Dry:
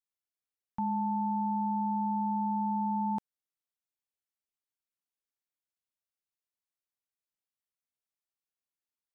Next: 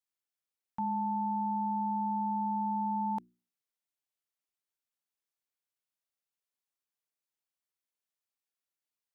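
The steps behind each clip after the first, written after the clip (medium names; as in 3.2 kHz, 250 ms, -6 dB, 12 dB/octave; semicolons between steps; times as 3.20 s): bass shelf 160 Hz -8 dB; hum notches 60/120/180/240/300/360 Hz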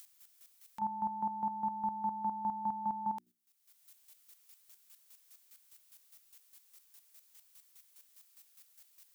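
tilt EQ +3.5 dB/octave; upward compressor, threshold -42 dBFS; square tremolo 4.9 Hz, depth 65%, duty 25%; trim +2.5 dB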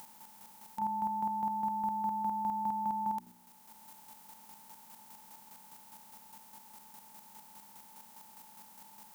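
spectral levelling over time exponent 0.4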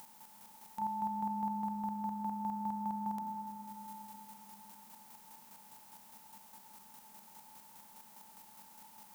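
algorithmic reverb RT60 4.7 s, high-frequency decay 0.8×, pre-delay 80 ms, DRR 5 dB; trim -2.5 dB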